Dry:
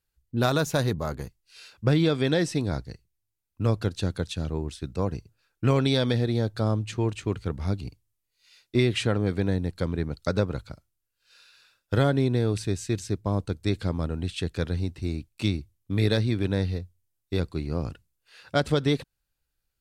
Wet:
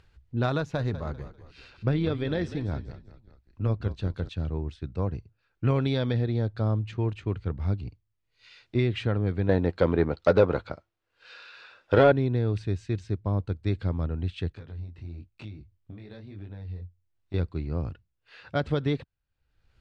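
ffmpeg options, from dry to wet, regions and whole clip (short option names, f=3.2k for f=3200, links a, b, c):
-filter_complex "[0:a]asettb=1/sr,asplit=3[a][b][c];[a]atrim=end=0.604[d];[b]atrim=start=0.6:end=4.29,asetpts=PTS-STARTPTS,afade=t=in:d=0.004:c=qsin,afade=t=out:st=3.686:d=0.004:c=qsin,tremolo=f=130:d=0.4,asplit=4[e][f][g][h];[f]adelay=196,afreqshift=-41,volume=-13dB[i];[g]adelay=392,afreqshift=-82,volume=-22.4dB[j];[h]adelay=588,afreqshift=-123,volume=-31.7dB[k];[e][i][j][k]amix=inputs=4:normalize=0,atrim=end_sample=162729[l];[c]atrim=start=4.286[m];[d][l]acrossfade=d=0.004:c1=hsin:c2=qsin[n];[n][m]acrossfade=d=0.004:c1=qsin:c2=hsin,asettb=1/sr,asplit=3[o][p][q];[o]atrim=end=9.494[r];[p]atrim=start=9.49:end=12.12,asetpts=PTS-STARTPTS,afade=t=in:d=0.004:c=qsin,afade=t=out:st=2.626:d=0.004:c=qsin,equalizer=f=470:t=o:w=2.6:g=8.5,asplit=2[s][t];[t]adelay=12,volume=-13dB[u];[s][u]amix=inputs=2:normalize=0,atrim=end_sample=115983,asplit=2[v][w];[w]highpass=f=720:p=1,volume=15dB,asoftclip=type=tanh:threshold=-3.5dB[x];[v][x]amix=inputs=2:normalize=0,lowpass=f=6.3k:p=1,volume=-6dB[y];[q]atrim=start=12.116[z];[r][y]acrossfade=d=0.004:c1=hsin:c2=qsin[aa];[aa][z]acrossfade=d=0.004:c1=qsin:c2=hsin,asettb=1/sr,asplit=3[ab][ac][ad];[ab]atrim=end=14.524[ae];[ac]atrim=start=14.52:end=17.34,asetpts=PTS-STARTPTS,afade=t=in:d=0.004:c=qsin,afade=t=out:st=2.816:d=0.004:c=qsin,acompressor=threshold=-32dB:ratio=12:attack=3.2:release=140:knee=1:detection=peak,flanger=delay=19:depth=5:speed=1[af];[ad]atrim=start=17.336[ag];[ae][af]acrossfade=d=0.004:c1=hsin:c2=qsin[ah];[ah][ag]acrossfade=d=0.004:c1=qsin:c2=hsin,lowpass=3.1k,equalizer=f=86:t=o:w=1.2:g=6,acompressor=mode=upward:threshold=-37dB:ratio=2.5,volume=-4dB"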